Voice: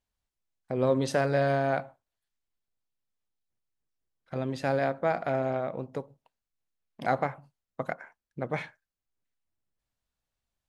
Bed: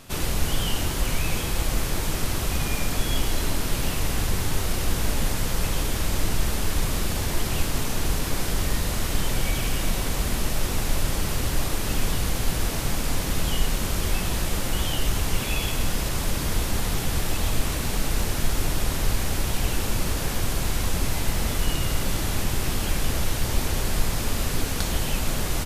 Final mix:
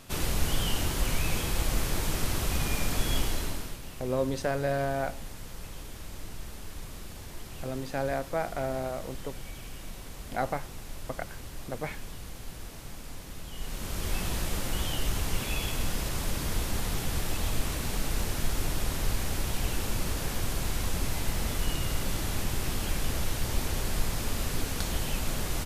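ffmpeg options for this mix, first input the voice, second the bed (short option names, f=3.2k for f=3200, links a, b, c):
-filter_complex "[0:a]adelay=3300,volume=-3.5dB[a];[1:a]volume=8dB,afade=t=out:st=3.17:d=0.62:silence=0.211349,afade=t=in:st=13.52:d=0.69:silence=0.266073[b];[a][b]amix=inputs=2:normalize=0"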